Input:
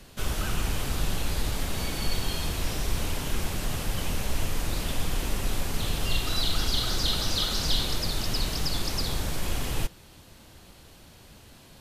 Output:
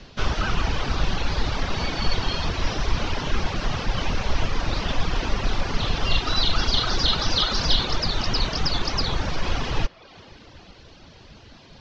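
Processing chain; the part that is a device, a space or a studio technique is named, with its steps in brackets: steep low-pass 5.9 kHz 48 dB/octave; filtered reverb send (on a send at -11 dB: high-pass 380 Hz 12 dB/octave + low-pass 4.1 kHz + reverberation RT60 4.2 s, pre-delay 104 ms); on the sum: reverb removal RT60 0.74 s; dynamic bell 1.1 kHz, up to +5 dB, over -52 dBFS, Q 0.93; trim +6 dB

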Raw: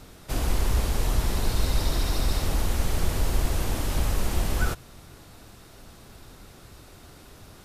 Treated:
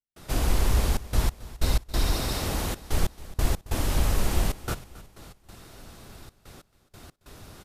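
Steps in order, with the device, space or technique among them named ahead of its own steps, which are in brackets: 2.16–2.78 s: high-pass 93 Hz 6 dB/octave; trance gate with a delay (trance gate ".xxxxx.x..x" 93 bpm -60 dB; feedback delay 272 ms, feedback 50%, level -18 dB); trim +1.5 dB

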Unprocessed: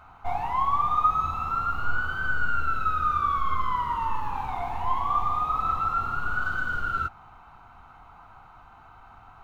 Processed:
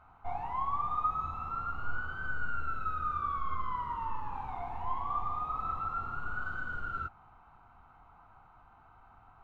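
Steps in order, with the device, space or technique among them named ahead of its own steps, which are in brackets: through cloth (treble shelf 3.1 kHz -12 dB); trim -7.5 dB

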